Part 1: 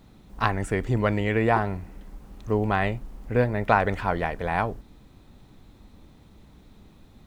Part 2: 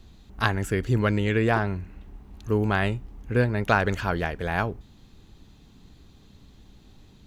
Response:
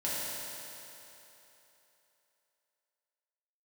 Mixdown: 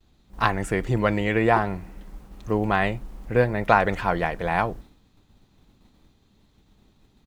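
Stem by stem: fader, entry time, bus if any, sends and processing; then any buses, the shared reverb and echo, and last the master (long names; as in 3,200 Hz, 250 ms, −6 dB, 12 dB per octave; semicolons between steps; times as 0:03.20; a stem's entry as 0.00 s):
+2.5 dB, 0.00 s, no send, downward expander −41 dBFS
−9.0 dB, 5.6 ms, no send, no processing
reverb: not used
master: low-shelf EQ 320 Hz −2.5 dB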